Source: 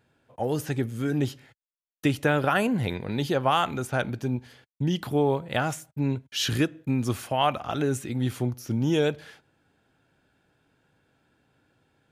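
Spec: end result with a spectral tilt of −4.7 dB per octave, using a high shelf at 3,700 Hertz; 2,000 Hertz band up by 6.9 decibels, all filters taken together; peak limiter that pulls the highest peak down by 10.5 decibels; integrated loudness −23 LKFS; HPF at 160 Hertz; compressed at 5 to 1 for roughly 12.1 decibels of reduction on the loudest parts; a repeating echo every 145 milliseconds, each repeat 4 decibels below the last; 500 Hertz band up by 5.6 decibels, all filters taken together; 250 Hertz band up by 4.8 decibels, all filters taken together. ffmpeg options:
ffmpeg -i in.wav -af "highpass=160,equalizer=frequency=250:width_type=o:gain=5,equalizer=frequency=500:width_type=o:gain=5,equalizer=frequency=2000:width_type=o:gain=7.5,highshelf=frequency=3700:gain=6.5,acompressor=threshold=-27dB:ratio=5,alimiter=limit=-22.5dB:level=0:latency=1,aecho=1:1:145|290|435|580|725|870|1015|1160|1305:0.631|0.398|0.25|0.158|0.0994|0.0626|0.0394|0.0249|0.0157,volume=9dB" out.wav

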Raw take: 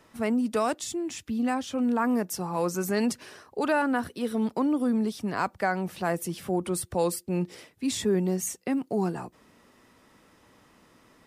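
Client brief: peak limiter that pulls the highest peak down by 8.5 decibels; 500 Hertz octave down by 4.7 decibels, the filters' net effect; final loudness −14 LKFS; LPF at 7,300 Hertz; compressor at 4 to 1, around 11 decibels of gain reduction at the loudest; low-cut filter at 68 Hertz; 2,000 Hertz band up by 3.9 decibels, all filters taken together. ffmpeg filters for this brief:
ffmpeg -i in.wav -af "highpass=68,lowpass=7300,equalizer=frequency=500:width_type=o:gain=-6.5,equalizer=frequency=2000:width_type=o:gain=6,acompressor=threshold=-37dB:ratio=4,volume=26.5dB,alimiter=limit=-5dB:level=0:latency=1" out.wav

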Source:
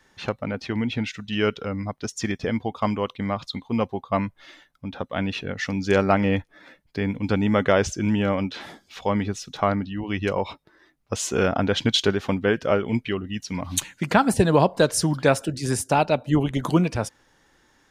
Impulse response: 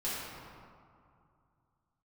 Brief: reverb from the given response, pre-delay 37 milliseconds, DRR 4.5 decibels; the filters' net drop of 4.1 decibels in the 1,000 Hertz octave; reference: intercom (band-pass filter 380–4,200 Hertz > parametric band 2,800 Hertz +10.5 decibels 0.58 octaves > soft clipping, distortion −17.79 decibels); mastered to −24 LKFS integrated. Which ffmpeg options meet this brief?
-filter_complex "[0:a]equalizer=frequency=1000:width_type=o:gain=-6,asplit=2[link_01][link_02];[1:a]atrim=start_sample=2205,adelay=37[link_03];[link_02][link_03]afir=irnorm=-1:irlink=0,volume=-10dB[link_04];[link_01][link_04]amix=inputs=2:normalize=0,highpass=380,lowpass=4200,equalizer=frequency=2800:width_type=o:width=0.58:gain=10.5,asoftclip=threshold=-12dB,volume=2.5dB"

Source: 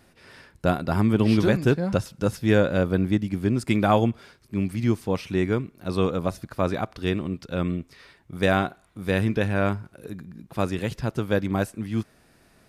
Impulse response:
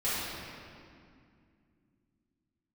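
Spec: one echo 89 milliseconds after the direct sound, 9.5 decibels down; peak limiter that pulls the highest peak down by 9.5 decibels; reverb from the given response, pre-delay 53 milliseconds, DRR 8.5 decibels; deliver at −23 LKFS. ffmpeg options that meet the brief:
-filter_complex "[0:a]alimiter=limit=-17dB:level=0:latency=1,aecho=1:1:89:0.335,asplit=2[link_01][link_02];[1:a]atrim=start_sample=2205,adelay=53[link_03];[link_02][link_03]afir=irnorm=-1:irlink=0,volume=-18dB[link_04];[link_01][link_04]amix=inputs=2:normalize=0,volume=5dB"

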